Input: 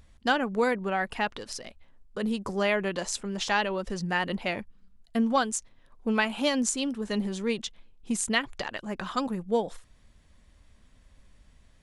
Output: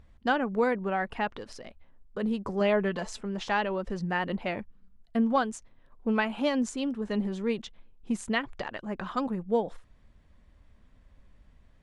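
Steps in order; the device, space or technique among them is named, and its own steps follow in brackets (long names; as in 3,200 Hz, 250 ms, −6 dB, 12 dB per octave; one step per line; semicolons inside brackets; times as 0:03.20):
0:02.60–0:03.21: comb filter 4.6 ms, depth 55%
through cloth (high-shelf EQ 3,800 Hz −16 dB)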